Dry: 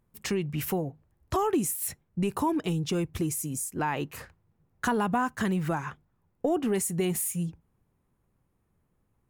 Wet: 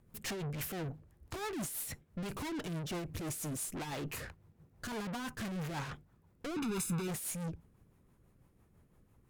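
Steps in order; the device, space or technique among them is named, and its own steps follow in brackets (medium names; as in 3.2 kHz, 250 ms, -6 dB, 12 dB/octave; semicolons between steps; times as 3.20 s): overdriven rotary cabinet (valve stage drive 46 dB, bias 0.5; rotary cabinet horn 6 Hz); 6.56–7.08 s: comb 0.8 ms, depth 98%; trim +10 dB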